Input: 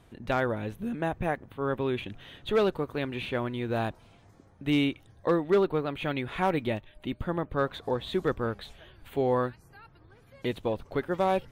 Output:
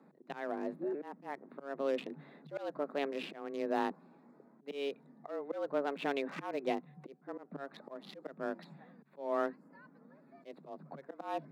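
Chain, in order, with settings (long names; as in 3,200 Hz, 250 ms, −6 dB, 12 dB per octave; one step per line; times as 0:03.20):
adaptive Wiener filter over 15 samples
volume swells 296 ms
frequency shifter +140 Hz
level −3.5 dB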